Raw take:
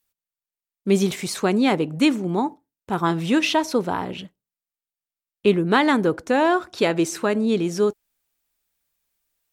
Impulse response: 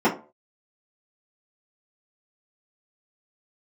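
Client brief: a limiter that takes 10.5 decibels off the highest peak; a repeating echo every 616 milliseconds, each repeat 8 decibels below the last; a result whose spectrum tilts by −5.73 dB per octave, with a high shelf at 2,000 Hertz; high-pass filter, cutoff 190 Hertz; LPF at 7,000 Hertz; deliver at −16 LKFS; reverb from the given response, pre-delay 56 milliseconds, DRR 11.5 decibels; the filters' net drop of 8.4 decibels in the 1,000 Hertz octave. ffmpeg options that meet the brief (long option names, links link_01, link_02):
-filter_complex "[0:a]highpass=190,lowpass=7000,equalizer=frequency=1000:width_type=o:gain=-9,highshelf=frequency=2000:gain=-8.5,alimiter=limit=-19.5dB:level=0:latency=1,aecho=1:1:616|1232|1848|2464|3080:0.398|0.159|0.0637|0.0255|0.0102,asplit=2[link_01][link_02];[1:a]atrim=start_sample=2205,adelay=56[link_03];[link_02][link_03]afir=irnorm=-1:irlink=0,volume=-30dB[link_04];[link_01][link_04]amix=inputs=2:normalize=0,volume=12dB"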